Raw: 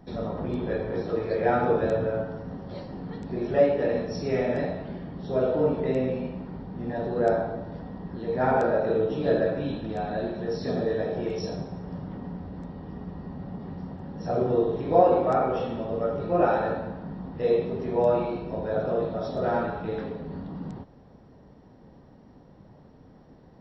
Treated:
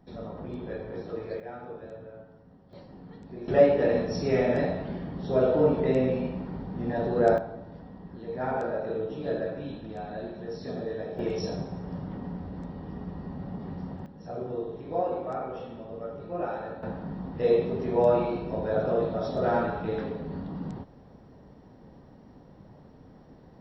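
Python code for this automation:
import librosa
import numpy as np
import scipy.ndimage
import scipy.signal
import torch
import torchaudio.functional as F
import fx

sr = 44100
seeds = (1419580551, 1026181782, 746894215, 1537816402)

y = fx.gain(x, sr, db=fx.steps((0.0, -7.5), (1.4, -18.0), (2.73, -10.0), (3.48, 1.5), (7.38, -7.0), (11.19, 0.0), (14.06, -10.0), (16.83, 0.5)))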